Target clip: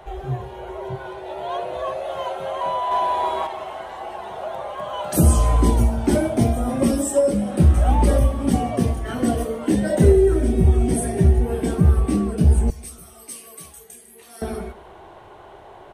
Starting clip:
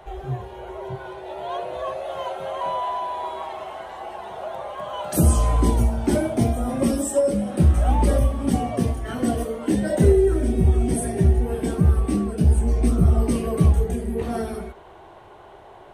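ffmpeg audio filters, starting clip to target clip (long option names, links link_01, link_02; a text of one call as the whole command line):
ffmpeg -i in.wav -filter_complex "[0:a]asettb=1/sr,asplit=3[link_01][link_02][link_03];[link_01]atrim=end=2.914[link_04];[link_02]atrim=start=2.91:end=3.47,asetpts=PTS-STARTPTS,afade=type=in:duration=0.004:curve=qsin,afade=type=out:start_time=0.556:duration=0.004:curve=qsin,acontrast=31[link_05];[link_03]atrim=start=3.466[link_06];[link_04][link_05]acrossfade=duration=0.004:curve1=hsin:curve2=qsin[link_07];[link_07][link_06]acrossfade=duration=0.004:curve1=qsin:curve2=hsin,asettb=1/sr,asplit=3[link_08][link_09][link_10];[link_08]atrim=end=12.704[link_11];[link_09]atrim=start=12.7:end=14.42,asetpts=PTS-STARTPTS,afade=type=in:duration=0.004:curve=qsin,afade=type=out:start_time=1.716:duration=0.004:curve=qsin,aderivative[link_12];[link_10]atrim=start=14.416[link_13];[link_11][link_12]acrossfade=duration=0.004:curve1=hsin:curve2=qsin[link_14];[link_14][link_13]acrossfade=duration=0.004:curve1=qsin:curve2=hsin,aecho=1:1:143|286|429:0.0794|0.0342|0.0147,volume=2dB" out.wav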